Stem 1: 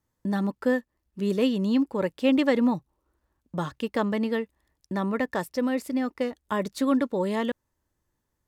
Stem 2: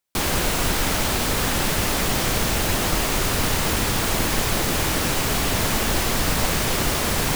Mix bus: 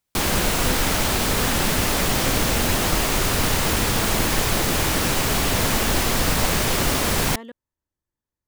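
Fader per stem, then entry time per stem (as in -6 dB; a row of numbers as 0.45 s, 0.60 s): -11.5 dB, +1.0 dB; 0.00 s, 0.00 s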